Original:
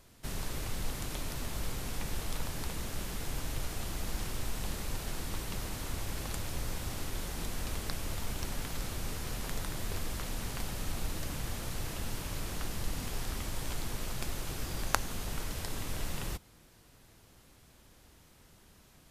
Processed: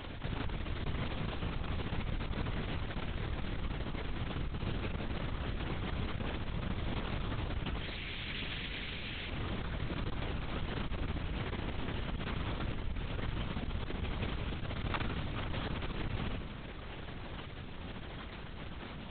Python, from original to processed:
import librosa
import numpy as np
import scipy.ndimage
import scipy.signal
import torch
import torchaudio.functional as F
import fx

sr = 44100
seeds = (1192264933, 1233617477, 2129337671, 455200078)

y = fx.steep_highpass(x, sr, hz=1900.0, slope=36, at=(7.78, 9.3))
y = np.maximum(y, 0.0)
y = fx.tremolo_random(y, sr, seeds[0], hz=3.5, depth_pct=55)
y = fx.room_flutter(y, sr, wall_m=10.0, rt60_s=0.34)
y = fx.lpc_vocoder(y, sr, seeds[1], excitation='whisper', order=8)
y = fx.env_flatten(y, sr, amount_pct=70)
y = F.gain(torch.from_numpy(y), -4.0).numpy()